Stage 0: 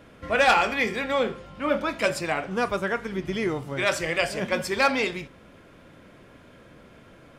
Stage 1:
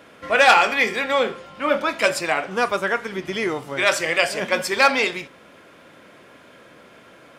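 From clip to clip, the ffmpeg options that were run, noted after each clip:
-af "highpass=f=480:p=1,volume=6.5dB"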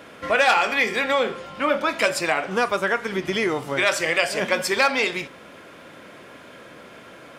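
-af "acompressor=threshold=-25dB:ratio=2,volume=4dB"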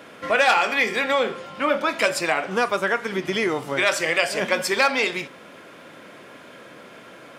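-af "highpass=110"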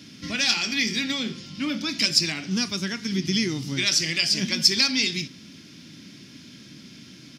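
-af "firequalizer=gain_entry='entry(170,0);entry(280,-4);entry(490,-28);entry(1200,-25);entry(2000,-14);entry(5300,7);entry(7900,-10)':delay=0.05:min_phase=1,volume=7.5dB"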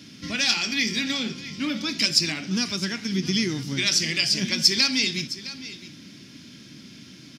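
-af "aecho=1:1:662:0.178"

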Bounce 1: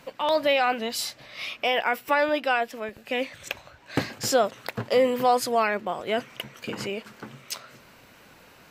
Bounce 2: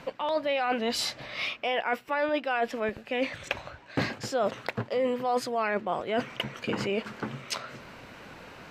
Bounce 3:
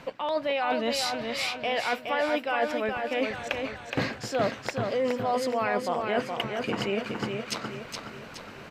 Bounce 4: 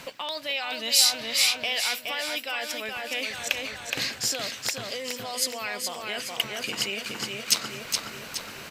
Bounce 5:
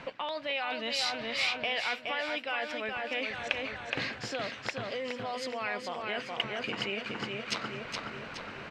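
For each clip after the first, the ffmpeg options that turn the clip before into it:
-af "aemphasis=mode=reproduction:type=50fm,areverse,acompressor=threshold=-32dB:ratio=6,areverse,volume=6.5dB"
-af "aecho=1:1:419|838|1257|1676|2095|2514:0.562|0.259|0.119|0.0547|0.0252|0.0116"
-filter_complex "[0:a]acrossover=split=2300[a][b];[a]acompressor=threshold=-35dB:ratio=6[c];[c][b]amix=inputs=2:normalize=0,crystalizer=i=6:c=0,volume=-1dB"
-af "lowpass=2.3k"

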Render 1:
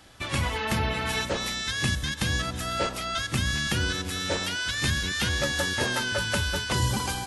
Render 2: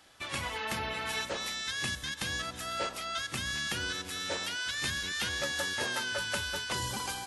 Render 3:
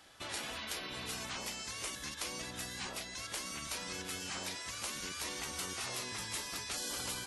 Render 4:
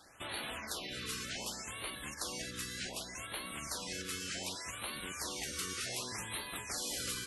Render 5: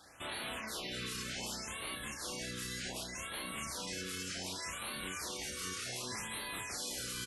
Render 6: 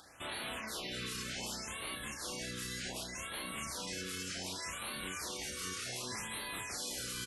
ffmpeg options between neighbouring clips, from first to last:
-af "lowshelf=f=260:g=-12,volume=-5dB"
-af "afftfilt=real='re*lt(hypot(re,im),0.0355)':imag='im*lt(hypot(re,im),0.0355)':win_size=1024:overlap=0.75"
-af "afftfilt=real='re*(1-between(b*sr/1024,710*pow(6400/710,0.5+0.5*sin(2*PI*0.66*pts/sr))/1.41,710*pow(6400/710,0.5+0.5*sin(2*PI*0.66*pts/sr))*1.41))':imag='im*(1-between(b*sr/1024,710*pow(6400/710,0.5+0.5*sin(2*PI*0.66*pts/sr))/1.41,710*pow(6400/710,0.5+0.5*sin(2*PI*0.66*pts/sr))*1.41))':win_size=1024:overlap=0.75,volume=1dB"
-filter_complex "[0:a]alimiter=level_in=9.5dB:limit=-24dB:level=0:latency=1:release=10,volume=-9.5dB,asplit=2[a][b];[b]adelay=32,volume=-3.5dB[c];[a][c]amix=inputs=2:normalize=0"
-af "acompressor=mode=upward:threshold=-58dB:ratio=2.5"

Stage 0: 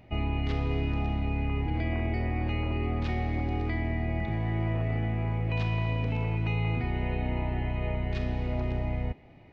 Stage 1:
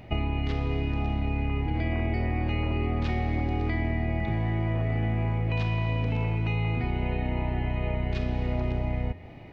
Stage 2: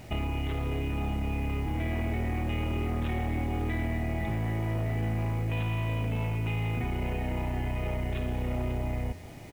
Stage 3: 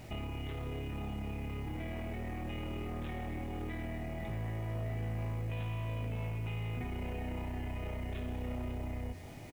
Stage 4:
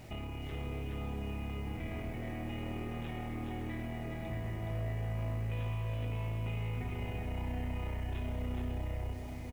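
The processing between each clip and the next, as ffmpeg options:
-af "bandreject=f=87.87:t=h:w=4,bandreject=f=175.74:t=h:w=4,bandreject=f=263.61:t=h:w=4,bandreject=f=351.48:t=h:w=4,bandreject=f=439.35:t=h:w=4,bandreject=f=527.22:t=h:w=4,bandreject=f=615.09:t=h:w=4,bandreject=f=702.96:t=h:w=4,bandreject=f=790.83:t=h:w=4,bandreject=f=878.7:t=h:w=4,bandreject=f=966.57:t=h:w=4,bandreject=f=1.05444k:t=h:w=4,bandreject=f=1.14231k:t=h:w=4,bandreject=f=1.23018k:t=h:w=4,bandreject=f=1.31805k:t=h:w=4,bandreject=f=1.40592k:t=h:w=4,bandreject=f=1.49379k:t=h:w=4,bandreject=f=1.58166k:t=h:w=4,bandreject=f=1.66953k:t=h:w=4,bandreject=f=1.7574k:t=h:w=4,bandreject=f=1.84527k:t=h:w=4,bandreject=f=1.93314k:t=h:w=4,bandreject=f=2.02101k:t=h:w=4,bandreject=f=2.10888k:t=h:w=4,bandreject=f=2.19675k:t=h:w=4,bandreject=f=2.28462k:t=h:w=4,bandreject=f=2.37249k:t=h:w=4,bandreject=f=2.46036k:t=h:w=4,bandreject=f=2.54823k:t=h:w=4,bandreject=f=2.6361k:t=h:w=4,acompressor=threshold=-33dB:ratio=4,volume=8.5dB"
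-af "aresample=8000,asoftclip=type=tanh:threshold=-24.5dB,aresample=44100,acrusher=bits=8:mix=0:aa=0.000001"
-filter_complex "[0:a]alimiter=level_in=6dB:limit=-24dB:level=0:latency=1,volume=-6dB,asplit=2[a][b];[b]adelay=20,volume=-9dB[c];[a][c]amix=inputs=2:normalize=0,volume=-3.5dB"
-af "aecho=1:1:420:0.668,volume=-1.5dB"

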